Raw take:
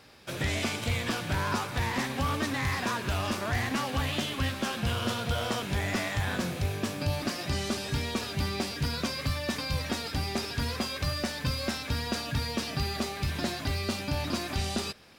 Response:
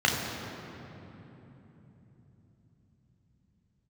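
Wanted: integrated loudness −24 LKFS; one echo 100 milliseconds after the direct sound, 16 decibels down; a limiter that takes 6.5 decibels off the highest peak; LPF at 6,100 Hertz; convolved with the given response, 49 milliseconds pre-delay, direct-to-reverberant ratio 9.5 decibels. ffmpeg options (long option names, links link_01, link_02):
-filter_complex "[0:a]lowpass=6100,alimiter=level_in=1.5dB:limit=-24dB:level=0:latency=1,volume=-1.5dB,aecho=1:1:100:0.158,asplit=2[link_01][link_02];[1:a]atrim=start_sample=2205,adelay=49[link_03];[link_02][link_03]afir=irnorm=-1:irlink=0,volume=-25dB[link_04];[link_01][link_04]amix=inputs=2:normalize=0,volume=9.5dB"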